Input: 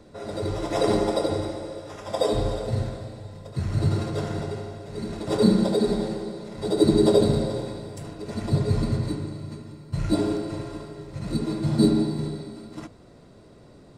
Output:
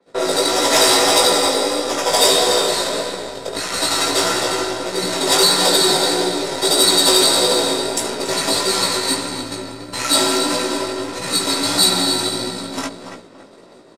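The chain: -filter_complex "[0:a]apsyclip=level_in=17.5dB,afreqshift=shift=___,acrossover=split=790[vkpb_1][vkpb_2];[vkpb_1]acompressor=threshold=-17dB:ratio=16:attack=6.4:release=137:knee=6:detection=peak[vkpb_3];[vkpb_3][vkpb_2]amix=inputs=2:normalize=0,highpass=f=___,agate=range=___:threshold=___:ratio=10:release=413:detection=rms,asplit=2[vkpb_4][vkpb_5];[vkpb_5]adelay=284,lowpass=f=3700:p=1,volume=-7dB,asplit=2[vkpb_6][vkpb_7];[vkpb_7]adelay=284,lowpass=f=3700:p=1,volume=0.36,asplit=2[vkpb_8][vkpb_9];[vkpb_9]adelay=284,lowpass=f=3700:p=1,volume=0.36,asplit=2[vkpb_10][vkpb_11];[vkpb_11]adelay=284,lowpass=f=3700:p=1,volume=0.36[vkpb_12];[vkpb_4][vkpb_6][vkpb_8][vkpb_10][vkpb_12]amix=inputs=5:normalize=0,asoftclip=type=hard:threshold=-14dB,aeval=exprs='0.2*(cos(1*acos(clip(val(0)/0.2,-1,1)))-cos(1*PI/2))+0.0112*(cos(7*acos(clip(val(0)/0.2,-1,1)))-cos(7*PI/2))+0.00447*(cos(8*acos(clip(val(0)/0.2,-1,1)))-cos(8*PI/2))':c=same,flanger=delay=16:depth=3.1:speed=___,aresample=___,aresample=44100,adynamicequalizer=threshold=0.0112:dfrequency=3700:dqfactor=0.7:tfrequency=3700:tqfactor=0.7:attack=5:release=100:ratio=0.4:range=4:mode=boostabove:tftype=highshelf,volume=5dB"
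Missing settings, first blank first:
-39, 350, -21dB, -33dB, 1.6, 32000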